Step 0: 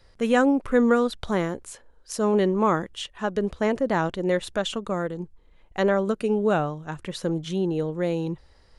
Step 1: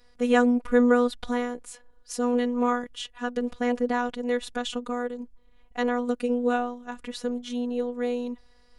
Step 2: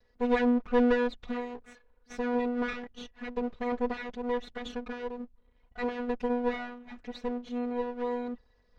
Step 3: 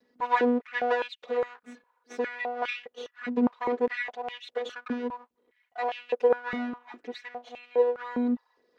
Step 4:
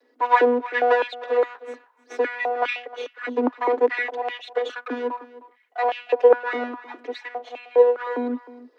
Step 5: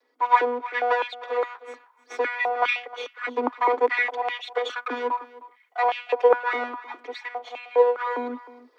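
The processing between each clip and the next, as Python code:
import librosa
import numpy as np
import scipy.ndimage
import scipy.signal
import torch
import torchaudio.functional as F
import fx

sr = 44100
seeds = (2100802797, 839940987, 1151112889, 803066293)

y1 = fx.robotise(x, sr, hz=244.0)
y2 = fx.lower_of_two(y1, sr, delay_ms=4.6)
y2 = fx.air_absorb(y2, sr, metres=170.0)
y2 = y2 * librosa.db_to_amplitude(-1.0)
y3 = fx.filter_held_highpass(y2, sr, hz=4.9, low_hz=250.0, high_hz=2700.0)
y4 = scipy.signal.sosfilt(scipy.signal.butter(16, 260.0, 'highpass', fs=sr, output='sos'), y3)
y4 = fx.high_shelf(y4, sr, hz=3800.0, db=-7.5)
y4 = y4 + 10.0 ** (-17.5 / 20.0) * np.pad(y4, (int(309 * sr / 1000.0), 0))[:len(y4)]
y4 = y4 * librosa.db_to_amplitude(8.0)
y5 = fx.rider(y4, sr, range_db=4, speed_s=2.0)
y5 = scipy.signal.sosfilt(scipy.signal.butter(2, 450.0, 'highpass', fs=sr, output='sos'), y5)
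y5 = y5 + 0.34 * np.pad(y5, (int(0.9 * sr / 1000.0), 0))[:len(y5)]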